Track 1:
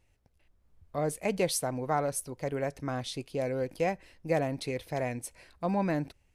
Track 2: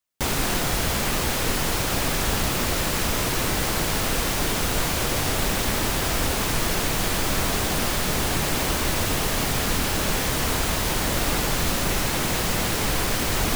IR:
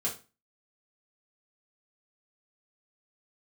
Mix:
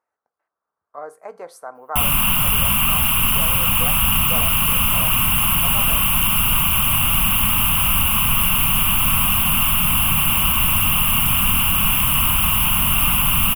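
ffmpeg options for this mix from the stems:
-filter_complex "[0:a]highpass=670,highshelf=f=1.9k:t=q:w=3:g=-13.5,volume=-2dB,asplit=2[a][b];[b]volume=-15dB[c];[1:a]acontrast=35,firequalizer=gain_entry='entry(200,0);entry(390,-22);entry(1100,5);entry(1800,-12);entry(2800,11);entry(4100,-21);entry(6300,-17);entry(11000,10)':delay=0.05:min_phase=1,adelay=1750,volume=-1dB[d];[2:a]atrim=start_sample=2205[e];[c][e]afir=irnorm=-1:irlink=0[f];[a][d][f]amix=inputs=3:normalize=0"

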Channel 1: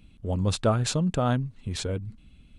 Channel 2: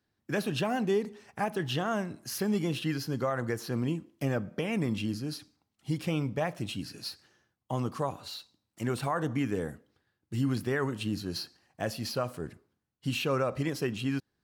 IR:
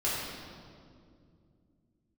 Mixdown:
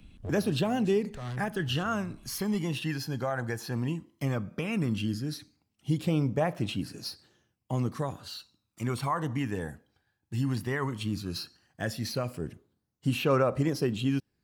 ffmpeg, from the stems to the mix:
-filter_complex "[0:a]acrossover=split=120|470|2300[a][b][c][d];[a]acompressor=threshold=-33dB:ratio=4[e];[b]acompressor=threshold=-43dB:ratio=4[f];[c]acompressor=threshold=-40dB:ratio=4[g];[d]acompressor=threshold=-45dB:ratio=4[h];[e][f][g][h]amix=inputs=4:normalize=0,asoftclip=type=hard:threshold=-33.5dB,volume=1dB[i];[1:a]aphaser=in_gain=1:out_gain=1:delay=1.3:decay=0.44:speed=0.15:type=triangular,volume=-0.5dB,asplit=2[j][k];[k]apad=whole_len=113870[l];[i][l]sidechaincompress=threshold=-39dB:ratio=8:attack=16:release=232[m];[m][j]amix=inputs=2:normalize=0"

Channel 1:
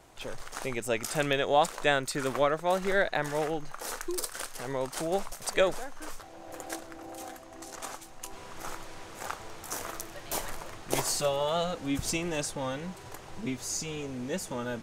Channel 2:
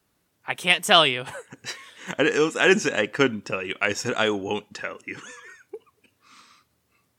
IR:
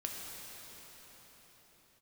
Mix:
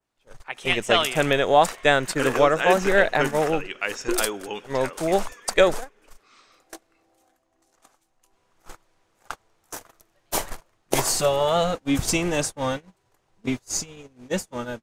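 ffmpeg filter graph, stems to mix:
-filter_complex "[0:a]agate=range=-31dB:threshold=-33dB:ratio=16:detection=peak,volume=2.5dB[a];[1:a]lowpass=7.5k,lowshelf=f=210:g=-11.5,volume=-10dB,asplit=2[b][c];[c]volume=-18.5dB[d];[2:a]atrim=start_sample=2205[e];[d][e]afir=irnorm=-1:irlink=0[f];[a][b][f]amix=inputs=3:normalize=0,adynamicequalizer=threshold=0.00794:dfrequency=4200:dqfactor=1.1:tfrequency=4200:tqfactor=1.1:attack=5:release=100:ratio=0.375:range=2:mode=cutabove:tftype=bell,dynaudnorm=f=160:g=5:m=6dB"

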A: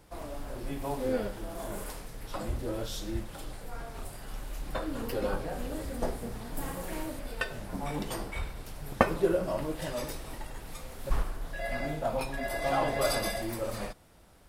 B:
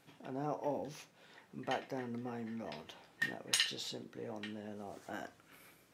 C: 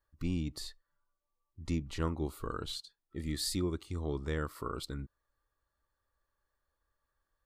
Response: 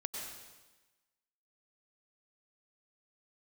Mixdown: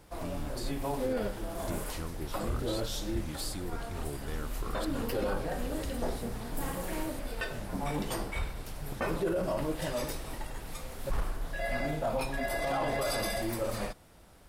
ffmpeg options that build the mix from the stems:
-filter_complex "[0:a]volume=1.5dB[a];[1:a]acompressor=threshold=-44dB:ratio=6,adelay=2300,volume=-4.5dB[b];[2:a]highshelf=f=11k:g=9,acompressor=threshold=-35dB:ratio=6,volume=-1dB[c];[a][b][c]amix=inputs=3:normalize=0,alimiter=limit=-23dB:level=0:latency=1:release=13"

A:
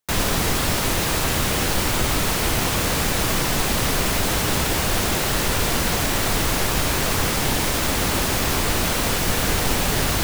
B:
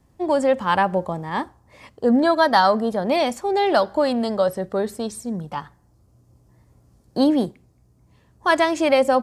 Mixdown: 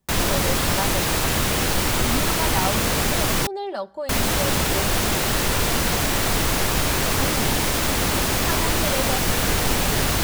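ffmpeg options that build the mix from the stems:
-filter_complex "[0:a]volume=0dB,asplit=3[a][b][c];[a]atrim=end=3.47,asetpts=PTS-STARTPTS,afade=t=out:st=3.466:d=0.004:c=hsin[d];[b]atrim=start=3.47:end=4.09,asetpts=PTS-STARTPTS,volume=0[e];[c]atrim=start=4.09,asetpts=PTS-STARTPTS,afade=t=in:d=0.004:c=hsin[f];[d][e][f]concat=n=3:v=0:a=1[g];[1:a]aecho=1:1:5.2:0.65,volume=-13.5dB[h];[g][h]amix=inputs=2:normalize=0"

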